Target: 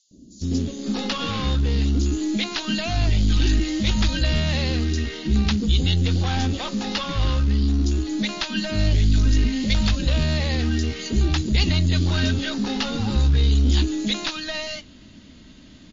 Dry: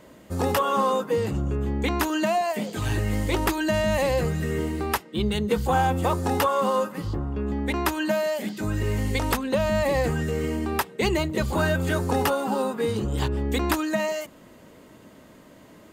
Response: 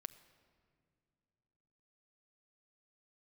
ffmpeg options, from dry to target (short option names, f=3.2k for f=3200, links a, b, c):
-filter_complex "[0:a]acrossover=split=430|5800[a][b][c];[a]adelay=110[d];[b]adelay=550[e];[d][e][c]amix=inputs=3:normalize=0,aresample=16000,asoftclip=type=tanh:threshold=-21dB,aresample=44100,asubboost=boost=3:cutoff=110,asplit=2[f][g];[g]acrusher=bits=3:dc=4:mix=0:aa=0.000001,volume=-10dB[h];[f][h]amix=inputs=2:normalize=0,equalizer=f=125:t=o:w=1:g=-6,equalizer=f=250:t=o:w=1:g=7,equalizer=f=500:t=o:w=1:g=-10,equalizer=f=1k:t=o:w=1:g=-11,equalizer=f=2k:t=o:w=1:g=-4,equalizer=f=4k:t=o:w=1:g=9,volume=5.5dB" -ar 16000 -c:a libmp3lame -b:a 32k